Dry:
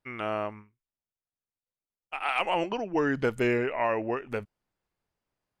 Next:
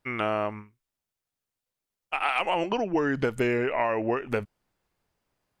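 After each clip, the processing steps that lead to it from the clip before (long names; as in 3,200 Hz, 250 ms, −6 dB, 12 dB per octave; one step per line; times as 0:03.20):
downward compressor, threshold −29 dBFS, peak gain reduction 8.5 dB
level +7 dB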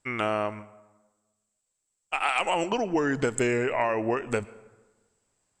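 low-pass with resonance 7,800 Hz, resonance Q 14
convolution reverb RT60 1.2 s, pre-delay 98 ms, DRR 19.5 dB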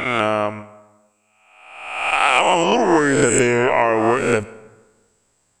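peak hold with a rise ahead of every peak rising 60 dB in 1.05 s
level +7.5 dB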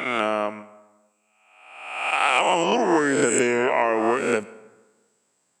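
high-pass filter 160 Hz 24 dB per octave
level −4.5 dB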